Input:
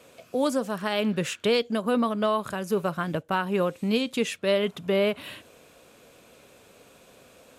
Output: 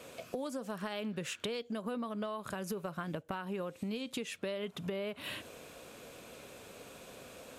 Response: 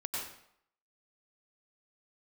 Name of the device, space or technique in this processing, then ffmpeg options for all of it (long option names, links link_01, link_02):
serial compression, peaks first: -af "acompressor=threshold=-34dB:ratio=4,acompressor=threshold=-40dB:ratio=2.5,volume=2.5dB"